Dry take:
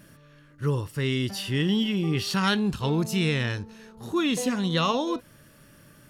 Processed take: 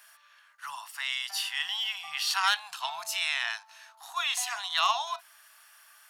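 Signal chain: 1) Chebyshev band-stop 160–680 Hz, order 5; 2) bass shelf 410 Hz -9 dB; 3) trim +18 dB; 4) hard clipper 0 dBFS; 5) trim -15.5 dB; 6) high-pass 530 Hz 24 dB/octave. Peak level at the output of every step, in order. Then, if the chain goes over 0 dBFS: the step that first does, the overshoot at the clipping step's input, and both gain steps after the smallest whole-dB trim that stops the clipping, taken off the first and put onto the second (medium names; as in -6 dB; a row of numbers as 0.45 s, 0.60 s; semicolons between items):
-12.5 dBFS, -13.5 dBFS, +4.5 dBFS, 0.0 dBFS, -15.5 dBFS, -12.5 dBFS; step 3, 4.5 dB; step 3 +13 dB, step 5 -10.5 dB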